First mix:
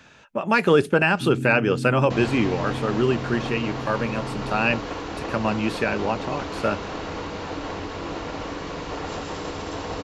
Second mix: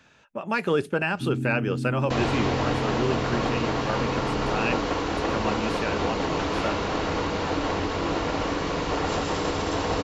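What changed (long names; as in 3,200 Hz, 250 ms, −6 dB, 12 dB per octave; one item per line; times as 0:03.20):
speech −6.5 dB
second sound +5.0 dB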